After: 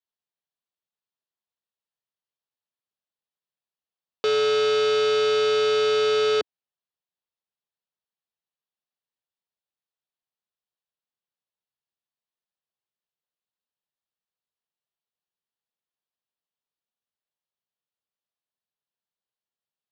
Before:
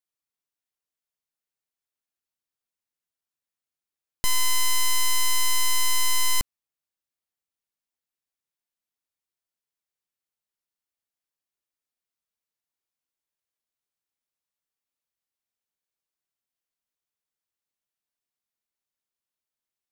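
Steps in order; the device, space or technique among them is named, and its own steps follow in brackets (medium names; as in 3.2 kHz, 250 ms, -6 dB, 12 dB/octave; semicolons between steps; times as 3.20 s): ring modulator pedal into a guitar cabinet (polarity switched at an audio rate 430 Hz; cabinet simulation 96–4300 Hz, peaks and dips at 290 Hz -10 dB, 1.4 kHz -4 dB, 2.2 kHz -9 dB)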